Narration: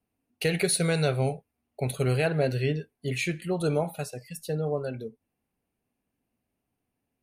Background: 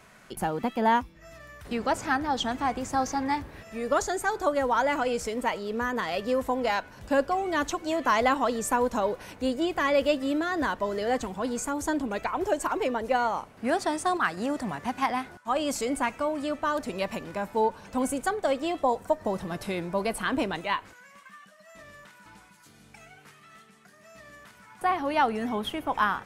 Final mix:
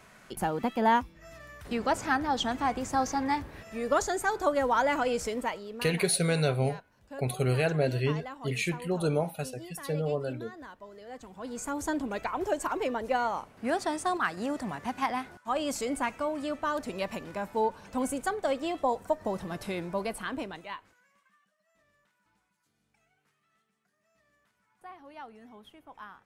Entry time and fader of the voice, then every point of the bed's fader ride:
5.40 s, -1.5 dB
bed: 5.32 s -1 dB
6.14 s -18.5 dB
11.08 s -18.5 dB
11.72 s -3 dB
19.90 s -3 dB
21.59 s -21.5 dB

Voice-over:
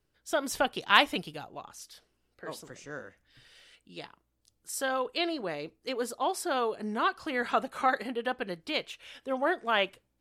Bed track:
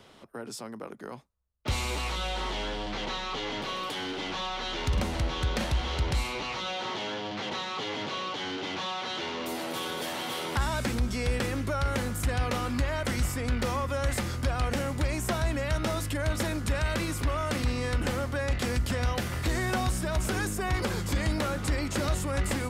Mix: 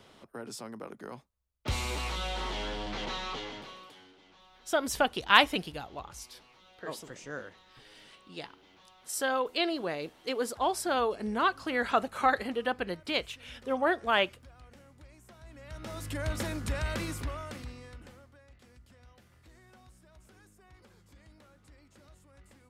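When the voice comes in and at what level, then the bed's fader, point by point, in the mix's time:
4.40 s, +1.0 dB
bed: 3.30 s -2.5 dB
4.20 s -26 dB
15.36 s -26 dB
16.16 s -4.5 dB
17.09 s -4.5 dB
18.47 s -29.5 dB

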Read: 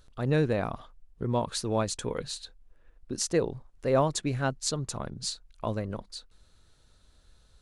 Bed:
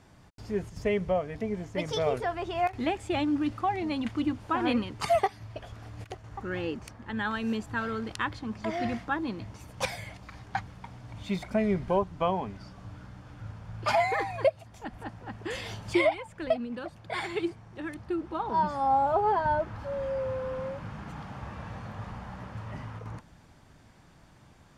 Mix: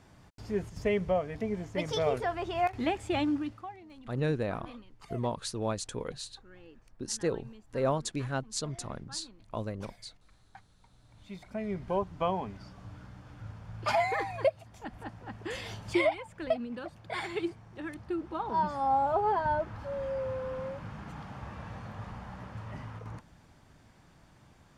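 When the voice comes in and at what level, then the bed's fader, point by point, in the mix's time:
3.90 s, -4.5 dB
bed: 3.29 s -1 dB
3.85 s -21 dB
10.79 s -21 dB
12.09 s -2.5 dB

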